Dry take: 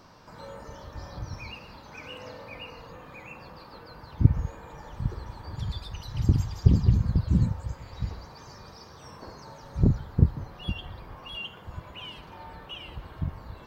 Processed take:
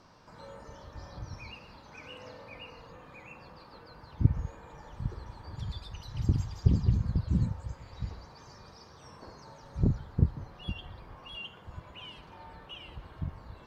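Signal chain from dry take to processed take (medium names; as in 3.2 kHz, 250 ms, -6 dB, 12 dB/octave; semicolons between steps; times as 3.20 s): low-pass 11 kHz 12 dB/octave; trim -5 dB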